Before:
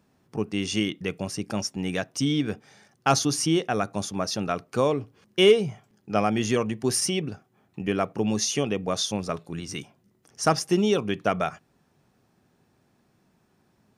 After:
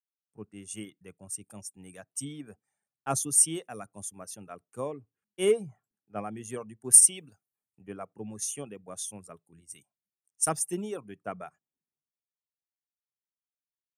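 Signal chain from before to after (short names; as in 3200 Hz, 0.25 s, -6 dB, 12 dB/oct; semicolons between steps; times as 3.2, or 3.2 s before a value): reverb removal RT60 0.51 s; resonant high shelf 6600 Hz +12 dB, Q 3; three-band expander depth 100%; gain -14.5 dB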